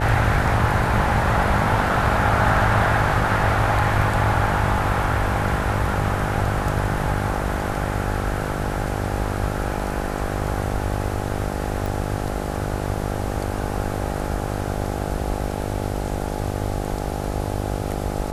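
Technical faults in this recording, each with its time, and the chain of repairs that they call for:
mains buzz 50 Hz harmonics 17 −27 dBFS
0:11.86: click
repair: click removal
hum removal 50 Hz, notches 17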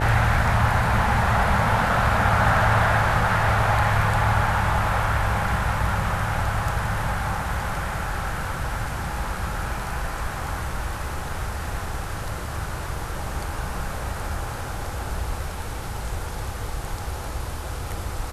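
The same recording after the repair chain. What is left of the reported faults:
none of them is left

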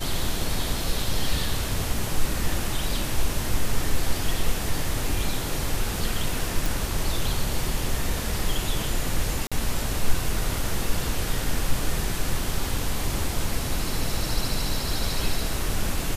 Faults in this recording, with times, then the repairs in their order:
0:06.66: click
0:09.47–0:09.52: drop-out 46 ms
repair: click removal
repair the gap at 0:09.47, 46 ms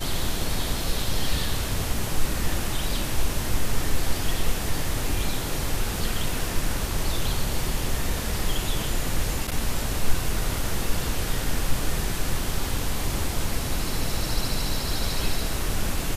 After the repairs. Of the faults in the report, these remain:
none of them is left

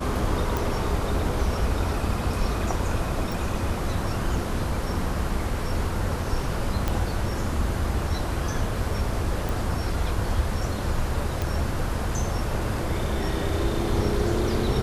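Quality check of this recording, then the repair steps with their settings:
0:00.57: click
0:03.32: click
0:06.88: click −11 dBFS
0:09.49: click
0:11.42: click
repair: click removal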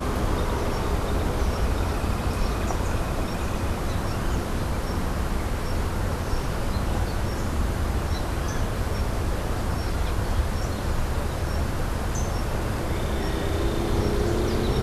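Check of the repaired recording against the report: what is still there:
0:00.57: click

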